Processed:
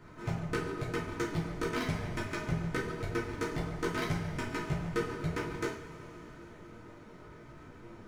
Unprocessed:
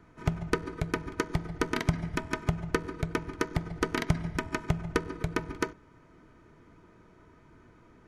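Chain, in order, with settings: chorus voices 2, 0.95 Hz, delay 13 ms, depth 4.6 ms; power-law waveshaper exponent 0.7; two-slope reverb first 0.37 s, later 4 s, from -19 dB, DRR -3.5 dB; trim -9 dB

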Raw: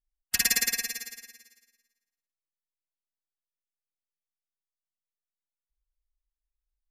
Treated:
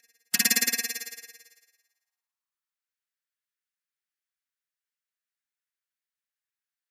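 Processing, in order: high-pass sweep 160 Hz -> 1.6 kHz, 0.11–2.95 s; reverse echo 1085 ms -21 dB; trim +1.5 dB

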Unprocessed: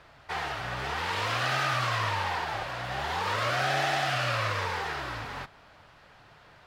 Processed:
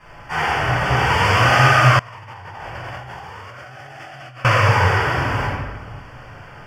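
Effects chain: Butterworth band-stop 3.9 kHz, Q 2.6; simulated room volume 940 m³, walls mixed, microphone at 9.6 m; 1.99–4.45 s: compressor with a negative ratio -35 dBFS, ratio -1; trim -1 dB

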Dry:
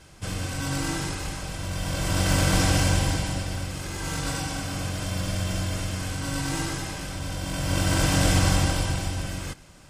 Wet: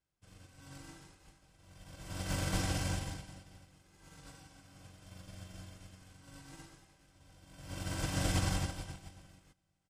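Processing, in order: feedback delay 405 ms, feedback 53%, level -16.5 dB; upward expansion 2.5:1, over -37 dBFS; trim -9 dB

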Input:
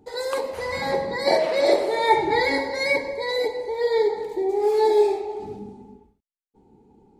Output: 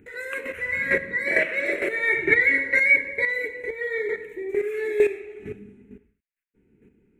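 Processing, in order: high-order bell 2 kHz +12.5 dB 1.1 oct; static phaser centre 2 kHz, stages 4; square tremolo 2.2 Hz, depth 65%, duty 15%; trim +4 dB

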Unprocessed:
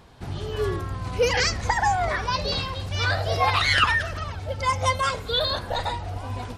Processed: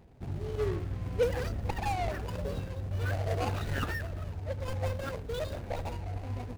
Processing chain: median filter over 41 samples; trim -4 dB

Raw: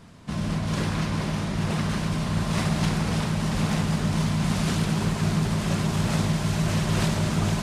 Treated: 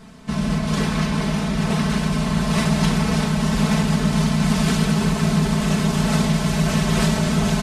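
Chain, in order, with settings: comb 4.6 ms, depth 77%; trim +3.5 dB

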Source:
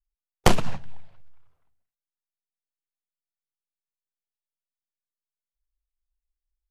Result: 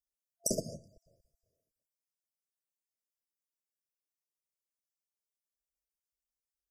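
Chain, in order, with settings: random holes in the spectrogram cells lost 23%; high-pass 510 Hz 6 dB/octave; FFT band-reject 680–4700 Hz; trim +2 dB

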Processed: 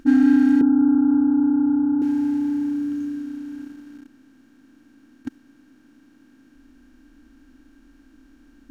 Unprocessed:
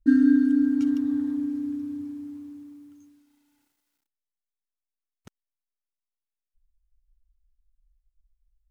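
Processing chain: spectral levelling over time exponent 0.4; in parallel at -4.5 dB: overload inside the chain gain 25.5 dB; 0.61–2.02 s: on the sum: Chebyshev low-pass 1.5 kHz, order 8; tape noise reduction on one side only decoder only

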